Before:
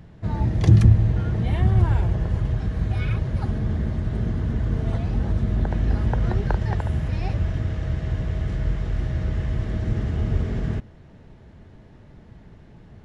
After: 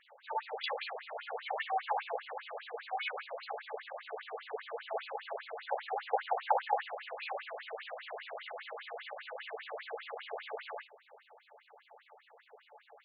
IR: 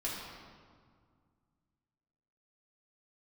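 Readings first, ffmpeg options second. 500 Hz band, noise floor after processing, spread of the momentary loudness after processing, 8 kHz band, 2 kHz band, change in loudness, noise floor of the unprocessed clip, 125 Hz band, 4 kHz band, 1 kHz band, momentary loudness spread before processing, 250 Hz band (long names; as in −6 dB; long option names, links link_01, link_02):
−5.0 dB, −66 dBFS, 10 LU, can't be measured, −2.0 dB, −16.0 dB, −48 dBFS, below −40 dB, −0.5 dB, +2.0 dB, 8 LU, below −40 dB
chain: -filter_complex "[0:a]bandreject=frequency=60:width_type=h:width=6,bandreject=frequency=120:width_type=h:width=6,bandreject=frequency=180:width_type=h:width=6,bandreject=frequency=240:width_type=h:width=6,bandreject=frequency=300:width_type=h:width=6,bandreject=frequency=360:width_type=h:width=6,bandreject=frequency=420:width_type=h:width=6[link_01];[1:a]atrim=start_sample=2205,atrim=end_sample=4410,asetrate=52920,aresample=44100[link_02];[link_01][link_02]afir=irnorm=-1:irlink=0,afftfilt=real='re*between(b*sr/1024,590*pow(3500/590,0.5+0.5*sin(2*PI*5*pts/sr))/1.41,590*pow(3500/590,0.5+0.5*sin(2*PI*5*pts/sr))*1.41)':imag='im*between(b*sr/1024,590*pow(3500/590,0.5+0.5*sin(2*PI*5*pts/sr))/1.41,590*pow(3500/590,0.5+0.5*sin(2*PI*5*pts/sr))*1.41)':win_size=1024:overlap=0.75,volume=4.5dB"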